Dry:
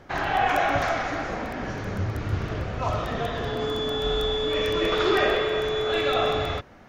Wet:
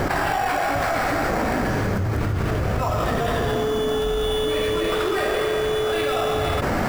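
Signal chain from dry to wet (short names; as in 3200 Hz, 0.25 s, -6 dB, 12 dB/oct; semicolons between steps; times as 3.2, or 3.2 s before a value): 3.65–4.23 comb 4.5 ms, depth 31%; in parallel at -4.5 dB: sample-rate reducer 6400 Hz, jitter 0%; on the sum: fast leveller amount 100%; gain -6.5 dB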